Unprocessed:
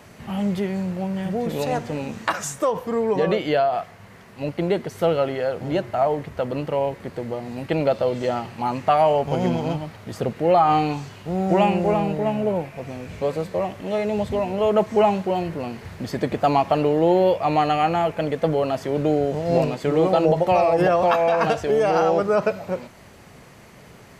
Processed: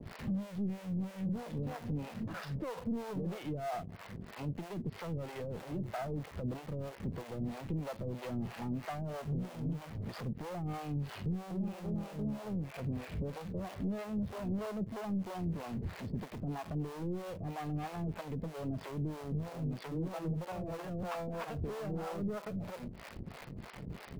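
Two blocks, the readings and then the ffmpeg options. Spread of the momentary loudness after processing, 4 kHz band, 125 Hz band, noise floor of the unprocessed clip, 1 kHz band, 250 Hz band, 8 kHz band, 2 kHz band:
4 LU, −17.5 dB, −9.0 dB, −46 dBFS, −23.0 dB, −12.5 dB, can't be measured, −17.5 dB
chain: -filter_complex "[0:a]bass=frequency=250:gain=14,treble=frequency=4000:gain=-5,acrossover=split=320[link_01][link_02];[link_02]acompressor=threshold=-34dB:ratio=2[link_03];[link_01][link_03]amix=inputs=2:normalize=0,equalizer=frequency=100:width_type=o:width=1.7:gain=-7.5,aresample=11025,aeval=exprs='sgn(val(0))*max(abs(val(0))-0.00251,0)':channel_layout=same,aresample=44100,acompressor=threshold=-28dB:ratio=20,asplit=2[link_04][link_05];[link_05]acrusher=bits=4:dc=4:mix=0:aa=0.000001,volume=-4dB[link_06];[link_04][link_06]amix=inputs=2:normalize=0,asoftclip=type=tanh:threshold=-30.5dB,acrossover=split=480[link_07][link_08];[link_07]aeval=exprs='val(0)*(1-1/2+1/2*cos(2*PI*3.1*n/s))':channel_layout=same[link_09];[link_08]aeval=exprs='val(0)*(1-1/2-1/2*cos(2*PI*3.1*n/s))':channel_layout=same[link_10];[link_09][link_10]amix=inputs=2:normalize=0,volume=1dB"

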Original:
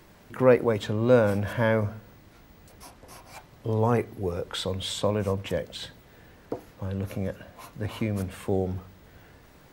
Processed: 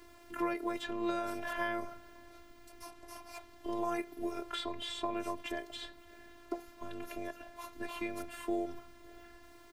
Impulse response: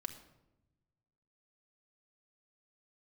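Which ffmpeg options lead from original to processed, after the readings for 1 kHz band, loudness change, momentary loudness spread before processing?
−5.5 dB, −12.5 dB, 20 LU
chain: -filter_complex "[0:a]acrossover=split=430|3200[link_01][link_02][link_03];[link_01]acompressor=threshold=-37dB:ratio=4[link_04];[link_02]acompressor=threshold=-29dB:ratio=4[link_05];[link_03]acompressor=threshold=-49dB:ratio=4[link_06];[link_04][link_05][link_06]amix=inputs=3:normalize=0,asplit=2[link_07][link_08];[link_08]adelay=559.8,volume=-24dB,highshelf=frequency=4000:gain=-12.6[link_09];[link_07][link_09]amix=inputs=2:normalize=0,afftfilt=real='hypot(re,im)*cos(PI*b)':imag='0':win_size=512:overlap=0.75,volume=1dB"

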